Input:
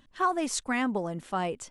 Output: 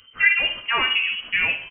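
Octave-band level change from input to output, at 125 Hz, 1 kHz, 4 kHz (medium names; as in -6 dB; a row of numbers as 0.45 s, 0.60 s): no reading, -1.0 dB, +19.0 dB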